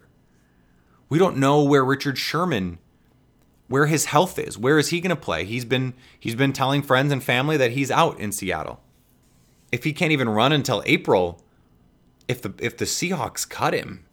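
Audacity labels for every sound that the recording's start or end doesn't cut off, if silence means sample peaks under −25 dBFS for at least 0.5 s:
1.120000	2.700000	sound
3.710000	8.710000	sound
9.730000	11.300000	sound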